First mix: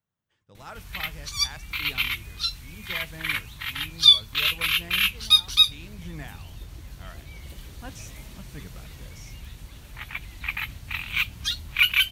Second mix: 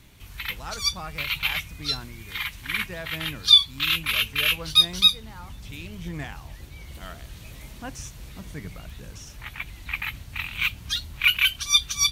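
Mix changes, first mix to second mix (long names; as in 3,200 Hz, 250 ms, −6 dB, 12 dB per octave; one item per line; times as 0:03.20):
speech +5.0 dB
background: entry −0.55 s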